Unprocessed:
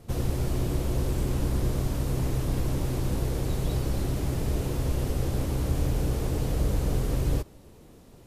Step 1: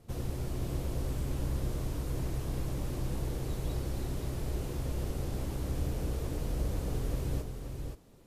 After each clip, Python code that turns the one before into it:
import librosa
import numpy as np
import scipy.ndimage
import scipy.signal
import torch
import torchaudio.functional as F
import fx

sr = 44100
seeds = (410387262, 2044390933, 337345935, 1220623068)

y = x + 10.0 ** (-6.0 / 20.0) * np.pad(x, (int(526 * sr / 1000.0), 0))[:len(x)]
y = y * librosa.db_to_amplitude(-8.0)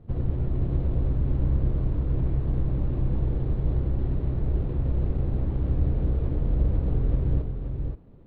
y = scipy.signal.medfilt(x, 15)
y = scipy.signal.sosfilt(scipy.signal.butter(8, 4100.0, 'lowpass', fs=sr, output='sos'), y)
y = fx.low_shelf(y, sr, hz=340.0, db=10.5)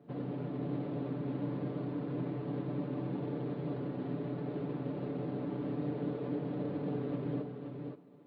y = scipy.signal.sosfilt(scipy.signal.butter(4, 190.0, 'highpass', fs=sr, output='sos'), x)
y = y + 0.65 * np.pad(y, (int(6.9 * sr / 1000.0), 0))[:len(y)]
y = y * librosa.db_to_amplitude(-2.0)